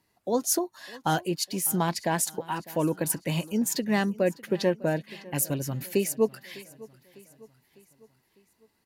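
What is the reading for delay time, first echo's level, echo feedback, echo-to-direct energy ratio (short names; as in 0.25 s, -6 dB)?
0.602 s, -21.0 dB, 52%, -19.5 dB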